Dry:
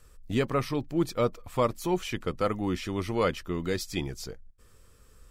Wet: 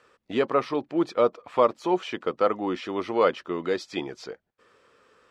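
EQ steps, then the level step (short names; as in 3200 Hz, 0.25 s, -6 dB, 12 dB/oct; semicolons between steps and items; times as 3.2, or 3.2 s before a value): BPF 390–2900 Hz; dynamic EQ 2100 Hz, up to -6 dB, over -49 dBFS, Q 1.3; +7.5 dB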